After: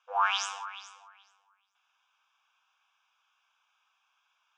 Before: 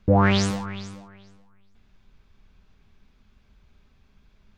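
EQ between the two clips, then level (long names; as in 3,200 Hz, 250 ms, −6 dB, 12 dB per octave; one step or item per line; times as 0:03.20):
linear-phase brick-wall high-pass 510 Hz
low-pass filter 6,400 Hz 12 dB per octave
phaser with its sweep stopped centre 2,900 Hz, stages 8
0.0 dB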